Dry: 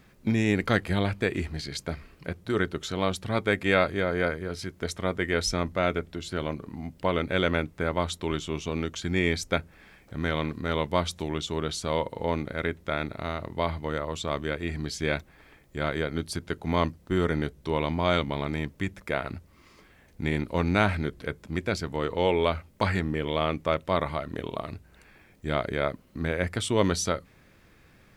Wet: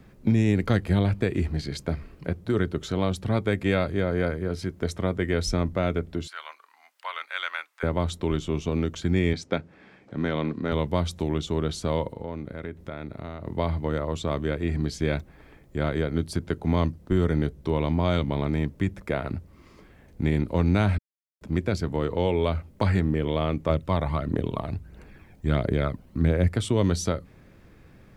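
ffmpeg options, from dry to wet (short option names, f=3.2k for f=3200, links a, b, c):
-filter_complex "[0:a]asettb=1/sr,asplit=3[a][b][c];[a]atrim=end=6.274[d];[b]atrim=start=6.27:end=7.83,asetpts=PTS-STARTPTS,afade=t=in:d=0.004:c=qsin,afade=t=out:st=1.556:d=0.004:c=qsin,highpass=f=1.1k:w=0.5412,highpass=f=1.1k:w=1.3066[e];[c]atrim=start=7.826[f];[d][e]acrossfade=d=0.004:c1=hsin:c2=qsin[g];[g][f]acrossfade=d=0.004:c1=qsin:c2=hsin,asettb=1/sr,asplit=3[h][i][j];[h]atrim=end=9.334[k];[i]atrim=start=9.33:end=10.72,asetpts=PTS-STARTPTS,afade=t=in:d=0.004:c=qsin,afade=t=out:st=1.386:d=0.004:c=qsin,highpass=160,lowpass=5.6k[l];[j]atrim=start=10.716[m];[k][l]acrossfade=d=0.004:c1=hsin:c2=qsin[n];[n][m]acrossfade=d=0.004:c1=qsin:c2=hsin,asettb=1/sr,asplit=3[o][p][q];[o]atrim=end=12.084[r];[p]atrim=start=12.08:end=13.46,asetpts=PTS-STARTPTS,afade=t=in:d=0.004:c=qsin,afade=t=out:st=1.376:d=0.004:c=qsin,acompressor=threshold=-40dB:ratio=2.5:attack=3.2:release=140:knee=1:detection=peak[s];[q]atrim=start=13.456[t];[r][s]acrossfade=d=0.004:c1=hsin:c2=qsin[u];[u][t]acrossfade=d=0.004:c1=qsin:c2=hsin,asettb=1/sr,asplit=3[v][w][x];[v]atrim=end=23.694[y];[w]atrim=start=23.69:end=26.48,asetpts=PTS-STARTPTS,afade=t=in:d=0.004:c=qsin,afade=t=out:st=2.786:d=0.004:c=qsin,aphaser=in_gain=1:out_gain=1:delay=1.4:decay=0.43:speed=1.5:type=triangular[z];[x]atrim=start=26.476[aa];[y][z]acrossfade=d=0.004:c1=hsin:c2=qsin[ab];[ab][aa]acrossfade=d=0.004:c1=qsin:c2=hsin,asplit=3[ac][ad][ae];[ac]atrim=end=20.98,asetpts=PTS-STARTPTS,afade=t=out:st=20.976:d=0.004:c=hsin[af];[ad]atrim=start=20.98:end=21.41,asetpts=PTS-STARTPTS,volume=0[ag];[ae]atrim=start=21.41,asetpts=PTS-STARTPTS,afade=t=in:d=0.004:c=hsin[ah];[af][ag][ah]concat=n=3:v=0:a=1,tiltshelf=f=910:g=5,acrossover=split=160|3000[ai][aj][ak];[aj]acompressor=threshold=-26dB:ratio=2.5[al];[ai][al][ak]amix=inputs=3:normalize=0,volume=2dB"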